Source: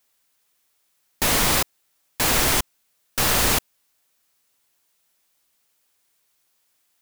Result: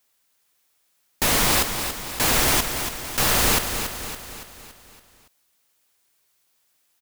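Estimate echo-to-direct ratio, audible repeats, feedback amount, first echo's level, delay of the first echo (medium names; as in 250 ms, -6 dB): -6.5 dB, 5, 52%, -8.0 dB, 282 ms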